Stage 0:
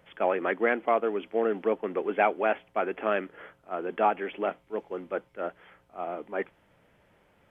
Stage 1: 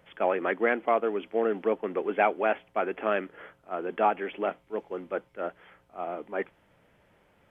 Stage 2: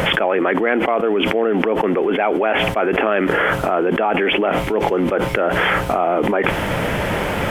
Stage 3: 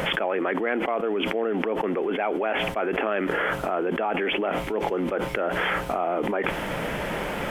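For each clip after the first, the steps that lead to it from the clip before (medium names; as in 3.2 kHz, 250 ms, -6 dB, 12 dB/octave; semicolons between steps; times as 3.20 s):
no audible change
level flattener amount 100%; trim +3 dB
peaking EQ 95 Hz -14.5 dB 0.45 oct; trim -8 dB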